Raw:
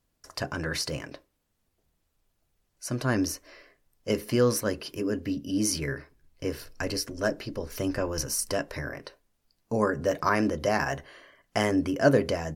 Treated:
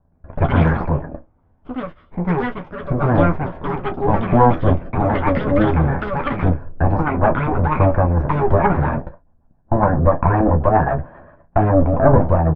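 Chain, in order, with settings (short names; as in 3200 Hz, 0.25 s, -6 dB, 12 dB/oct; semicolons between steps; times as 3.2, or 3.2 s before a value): minimum comb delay 1.2 ms; LPF 1200 Hz 24 dB/oct; in parallel at -1 dB: compressor, threshold -35 dBFS, peak gain reduction 16.5 dB; on the sum: rotary speaker horn 1.1 Hz, later 7.5 Hz, at 7.79; echoes that change speed 0.119 s, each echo +6 st, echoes 2, each echo -6 dB; on a send: early reflections 12 ms -7 dB, 34 ms -14 dB; on the sum: maximiser +15.5 dB; mismatched tape noise reduction decoder only; gain -1 dB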